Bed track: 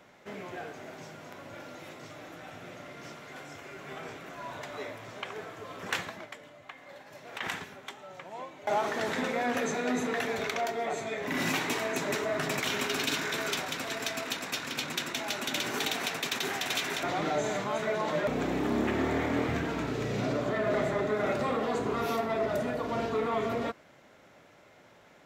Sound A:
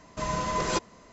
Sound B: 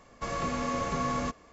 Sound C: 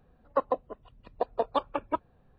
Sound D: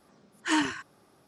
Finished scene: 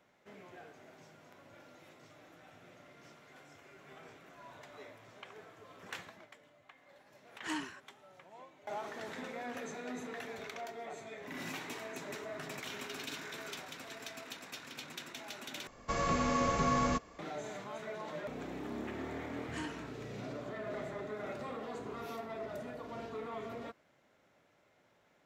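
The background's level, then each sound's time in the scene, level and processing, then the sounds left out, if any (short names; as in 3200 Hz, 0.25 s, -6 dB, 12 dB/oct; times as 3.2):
bed track -12.5 dB
6.98 add D -13 dB
15.67 replace with B
19.06 add D -17.5 dB
not used: A, C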